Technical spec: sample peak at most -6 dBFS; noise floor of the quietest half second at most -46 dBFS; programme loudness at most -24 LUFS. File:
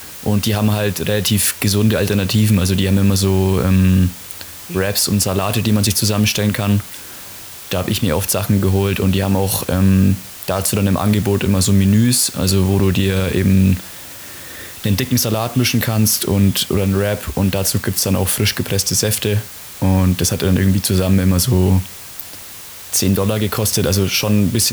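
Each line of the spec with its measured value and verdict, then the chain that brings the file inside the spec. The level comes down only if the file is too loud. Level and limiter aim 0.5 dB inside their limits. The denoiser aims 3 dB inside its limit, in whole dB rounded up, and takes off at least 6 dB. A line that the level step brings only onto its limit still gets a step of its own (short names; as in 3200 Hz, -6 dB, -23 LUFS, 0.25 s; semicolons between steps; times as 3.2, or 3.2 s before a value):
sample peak -4.0 dBFS: fail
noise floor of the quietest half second -34 dBFS: fail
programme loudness -16.0 LUFS: fail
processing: denoiser 7 dB, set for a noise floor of -34 dBFS; gain -8.5 dB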